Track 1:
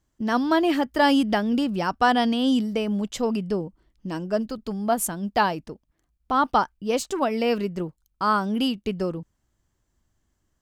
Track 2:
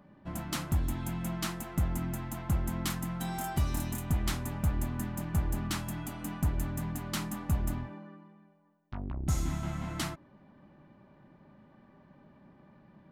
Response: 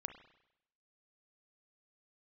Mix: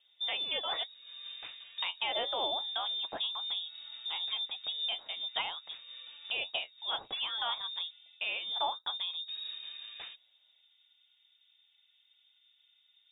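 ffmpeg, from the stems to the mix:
-filter_complex "[0:a]flanger=delay=6.3:depth=5.3:regen=51:speed=1.3:shape=sinusoidal,lowpass=frequency=3200:width_type=q:width=3.9,volume=-3dB,asplit=3[link_01][link_02][link_03];[link_01]atrim=end=0.89,asetpts=PTS-STARTPTS,afade=type=out:start_time=0.886:duration=0.004:curve=hsin[link_04];[link_02]atrim=start=0.89:end=1.82,asetpts=PTS-STARTPTS,volume=0[link_05];[link_03]atrim=start=1.82,asetpts=PTS-STARTPTS,afade=type=in:duration=0.004:curve=hsin[link_06];[link_04][link_05][link_06]concat=n=3:v=0:a=1,asplit=2[link_07][link_08];[1:a]volume=-10.5dB[link_09];[link_08]apad=whole_len=578307[link_10];[link_09][link_10]sidechaincompress=threshold=-39dB:ratio=8:attack=9.3:release=390[link_11];[link_07][link_11]amix=inputs=2:normalize=0,acrossover=split=140|3000[link_12][link_13][link_14];[link_13]acompressor=threshold=-34dB:ratio=6[link_15];[link_12][link_15][link_14]amix=inputs=3:normalize=0,lowpass=frequency=3200:width_type=q:width=0.5098,lowpass=frequency=3200:width_type=q:width=0.6013,lowpass=frequency=3200:width_type=q:width=0.9,lowpass=frequency=3200:width_type=q:width=2.563,afreqshift=-3800"

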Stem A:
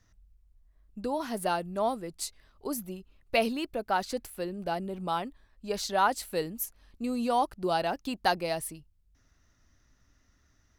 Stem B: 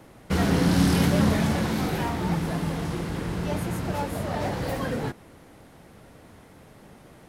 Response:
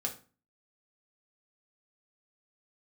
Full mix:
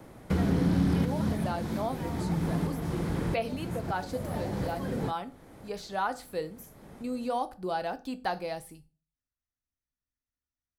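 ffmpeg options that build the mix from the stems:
-filter_complex "[0:a]agate=range=-26dB:threshold=-54dB:ratio=16:detection=peak,volume=-8dB,asplit=3[link_01][link_02][link_03];[link_02]volume=-5.5dB[link_04];[1:a]equalizer=frequency=4100:width=0.32:gain=-4.5,acrossover=split=440|3000[link_05][link_06][link_07];[link_06]acompressor=threshold=-38dB:ratio=2[link_08];[link_05][link_08][link_07]amix=inputs=3:normalize=0,volume=1dB[link_09];[link_03]apad=whole_len=321408[link_10];[link_09][link_10]sidechaincompress=threshold=-41dB:ratio=8:attack=5.8:release=505[link_11];[2:a]atrim=start_sample=2205[link_12];[link_04][link_12]afir=irnorm=-1:irlink=0[link_13];[link_01][link_11][link_13]amix=inputs=3:normalize=0,acrossover=split=3600[link_14][link_15];[link_15]acompressor=threshold=-47dB:ratio=4:attack=1:release=60[link_16];[link_14][link_16]amix=inputs=2:normalize=0,bandreject=frequency=2800:width=20,acompressor=threshold=-25dB:ratio=2"

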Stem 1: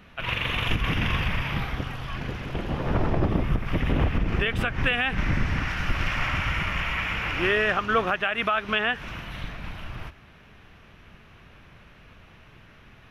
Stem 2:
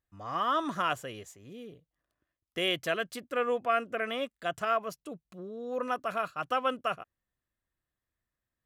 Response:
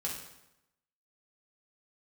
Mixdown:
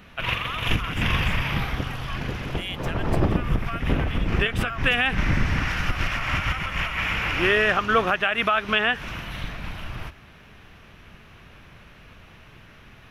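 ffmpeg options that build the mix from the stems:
-filter_complex "[0:a]highshelf=frequency=5100:gain=5,volume=2.5dB[link_01];[1:a]highpass=1300,volume=-2dB,asplit=2[link_02][link_03];[link_03]apad=whole_len=577814[link_04];[link_01][link_04]sidechaincompress=threshold=-39dB:ratio=5:attack=12:release=157[link_05];[link_05][link_02]amix=inputs=2:normalize=0"

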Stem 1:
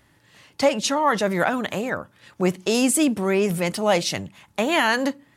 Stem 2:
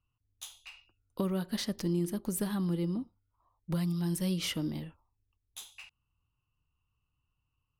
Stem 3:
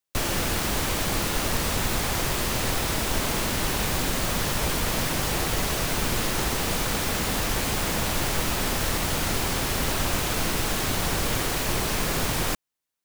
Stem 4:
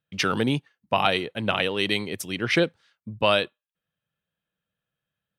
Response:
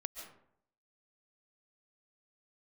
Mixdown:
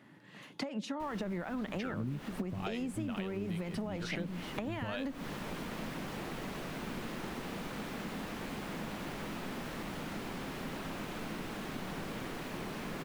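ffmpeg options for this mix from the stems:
-filter_complex "[0:a]acompressor=threshold=-23dB:ratio=6,volume=-0.5dB[link_01];[1:a]volume=-11.5dB,asplit=2[link_02][link_03];[2:a]adelay=850,volume=-14dB,asplit=2[link_04][link_05];[link_05]volume=-21dB[link_06];[3:a]acrossover=split=420[link_07][link_08];[link_07]aeval=exprs='val(0)*(1-1/2+1/2*cos(2*PI*2.2*n/s))':channel_layout=same[link_09];[link_08]aeval=exprs='val(0)*(1-1/2-1/2*cos(2*PI*2.2*n/s))':channel_layout=same[link_10];[link_09][link_10]amix=inputs=2:normalize=0,adelay=1600,volume=-10.5dB[link_11];[link_03]apad=whole_len=612723[link_12];[link_04][link_12]sidechaincompress=threshold=-42dB:ratio=8:attack=5.4:release=452[link_13];[link_01][link_02][link_13]amix=inputs=3:normalize=0,highpass=frequency=190:width=0.5412,highpass=frequency=190:width=1.3066,acompressor=threshold=-33dB:ratio=6,volume=0dB[link_14];[4:a]atrim=start_sample=2205[link_15];[link_06][link_15]afir=irnorm=-1:irlink=0[link_16];[link_11][link_14][link_16]amix=inputs=3:normalize=0,bass=frequency=250:gain=14,treble=frequency=4000:gain=-12,acompressor=threshold=-34dB:ratio=6"

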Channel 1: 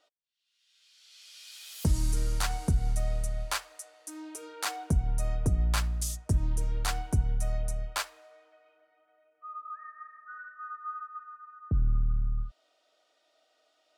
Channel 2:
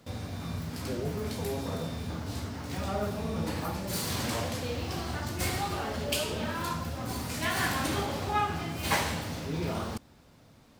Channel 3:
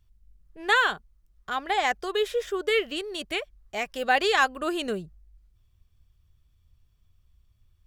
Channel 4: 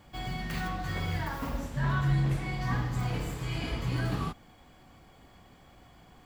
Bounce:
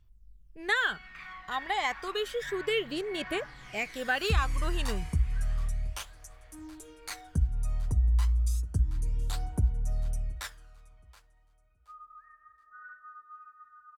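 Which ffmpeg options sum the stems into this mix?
ffmpeg -i stem1.wav -i stem2.wav -i stem3.wav -i stem4.wav -filter_complex "[0:a]equalizer=frequency=64:width_type=o:width=0.56:gain=14.5,bandreject=frequency=640:width=16,adelay=2450,volume=-8dB,asplit=2[link_01][link_02];[link_02]volume=-19.5dB[link_03];[2:a]volume=-4.5dB[link_04];[3:a]bandpass=frequency=1900:width_type=q:width=2.1:csg=0,adelay=650,volume=-3dB,asplit=2[link_05][link_06];[link_06]volume=-5.5dB[link_07];[link_01][link_04][link_05]amix=inputs=3:normalize=0,aphaser=in_gain=1:out_gain=1:delay=1.1:decay=0.52:speed=0.31:type=triangular,acompressor=threshold=-26dB:ratio=2,volume=0dB[link_08];[link_03][link_07]amix=inputs=2:normalize=0,aecho=0:1:724|1448|2172|2896:1|0.24|0.0576|0.0138[link_09];[link_08][link_09]amix=inputs=2:normalize=0" out.wav

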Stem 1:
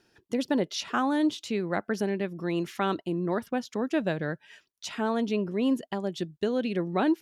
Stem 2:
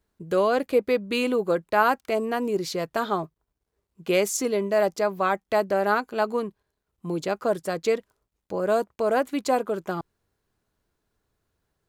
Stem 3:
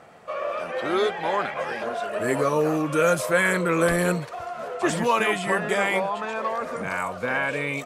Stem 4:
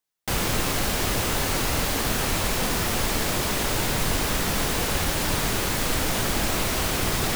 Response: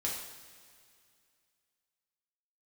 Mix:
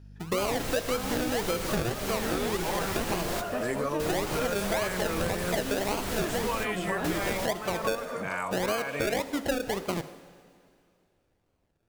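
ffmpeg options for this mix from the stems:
-filter_complex "[0:a]aeval=exprs='val(0)+0.00708*(sin(2*PI*50*n/s)+sin(2*PI*2*50*n/s)/2+sin(2*PI*3*50*n/s)/3+sin(2*PI*4*50*n/s)/4+sin(2*PI*5*50*n/s)/5)':channel_layout=same,volume=-9dB,asplit=2[link_01][link_02];[link_02]volume=-4.5dB[link_03];[1:a]acrusher=samples=34:mix=1:aa=0.000001:lfo=1:lforange=20.4:lforate=1.8,volume=0dB,asplit=3[link_04][link_05][link_06];[link_05]volume=-12.5dB[link_07];[2:a]adelay=1400,volume=-3.5dB[link_08];[3:a]adelay=100,volume=-4.5dB,asplit=2[link_09][link_10];[link_10]volume=-14.5dB[link_11];[link_06]apad=whole_len=328652[link_12];[link_09][link_12]sidechaingate=range=-33dB:threshold=-50dB:ratio=16:detection=peak[link_13];[4:a]atrim=start_sample=2205[link_14];[link_03][link_07]amix=inputs=2:normalize=0[link_15];[link_15][link_14]afir=irnorm=-1:irlink=0[link_16];[link_11]aecho=0:1:600:1[link_17];[link_01][link_04][link_08][link_13][link_16][link_17]amix=inputs=6:normalize=0,acompressor=threshold=-26dB:ratio=6"

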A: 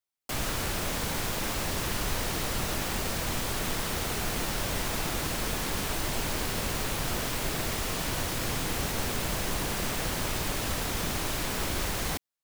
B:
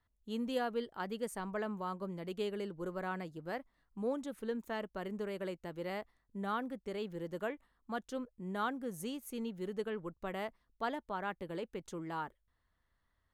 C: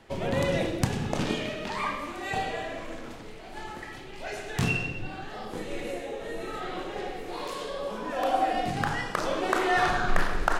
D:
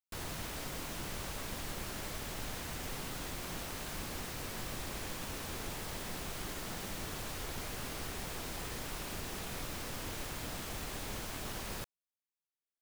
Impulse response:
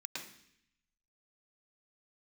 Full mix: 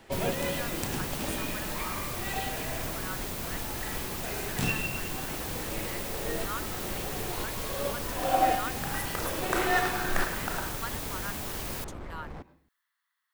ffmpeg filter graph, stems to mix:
-filter_complex "[0:a]adynamicsmooth=sensitivity=1.5:basefreq=650,adelay=250,volume=-7.5dB,asplit=2[link_01][link_02];[link_02]volume=-14dB[link_03];[1:a]highpass=frequency=1100:width=0.5412,highpass=frequency=1100:width=1.3066,volume=2.5dB,asplit=2[link_04][link_05];[2:a]volume=0.5dB,asplit=2[link_06][link_07];[link_07]volume=-9dB[link_08];[3:a]volume=2.5dB[link_09];[link_05]apad=whole_len=467258[link_10];[link_06][link_10]sidechaincompress=threshold=-56dB:ratio=8:attack=38:release=306[link_11];[4:a]atrim=start_sample=2205[link_12];[link_03][link_08]amix=inputs=2:normalize=0[link_13];[link_13][link_12]afir=irnorm=-1:irlink=0[link_14];[link_01][link_04][link_11][link_09][link_14]amix=inputs=5:normalize=0,highshelf=frequency=11000:gain=9.5"

